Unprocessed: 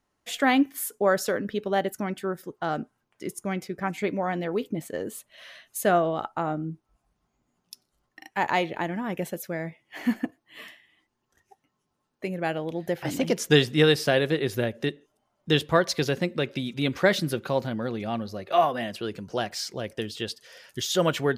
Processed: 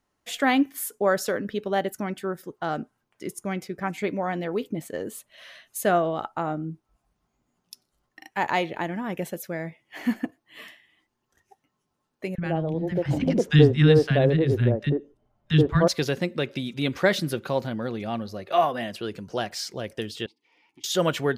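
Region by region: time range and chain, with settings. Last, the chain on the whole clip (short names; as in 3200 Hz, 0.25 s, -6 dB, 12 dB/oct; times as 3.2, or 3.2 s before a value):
12.35–15.88 RIAA curve playback + three bands offset in time highs, lows, mids 30/80 ms, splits 250/1100 Hz
20.26–20.84 hard clip -27 dBFS + vowel filter u + three-band squash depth 70%
whole clip: dry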